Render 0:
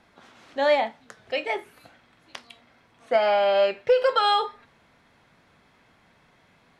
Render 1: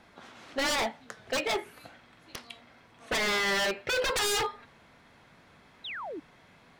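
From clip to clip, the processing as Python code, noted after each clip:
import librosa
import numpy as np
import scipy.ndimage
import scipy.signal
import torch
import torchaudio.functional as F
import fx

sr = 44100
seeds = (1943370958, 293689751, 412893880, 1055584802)

y = 10.0 ** (-25.0 / 20.0) * (np.abs((x / 10.0 ** (-25.0 / 20.0) + 3.0) % 4.0 - 2.0) - 1.0)
y = fx.spec_paint(y, sr, seeds[0], shape='fall', start_s=5.84, length_s=0.36, low_hz=270.0, high_hz=4100.0, level_db=-40.0)
y = y * 10.0 ** (2.0 / 20.0)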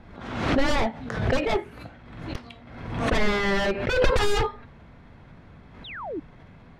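y = fx.riaa(x, sr, side='playback')
y = fx.pre_swell(y, sr, db_per_s=56.0)
y = y * 10.0 ** (3.0 / 20.0)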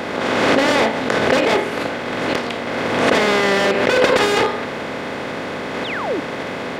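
y = fx.bin_compress(x, sr, power=0.4)
y = scipy.signal.sosfilt(scipy.signal.butter(2, 220.0, 'highpass', fs=sr, output='sos'), y)
y = y * 10.0 ** (4.0 / 20.0)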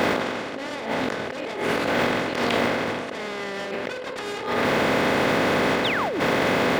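y = np.where(np.abs(x) >= 10.0 ** (-40.5 / 20.0), x, 0.0)
y = fx.over_compress(y, sr, threshold_db=-26.0, ratio=-1.0)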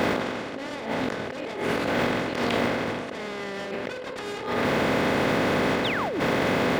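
y = fx.low_shelf(x, sr, hz=280.0, db=5.0)
y = y * 10.0 ** (-3.5 / 20.0)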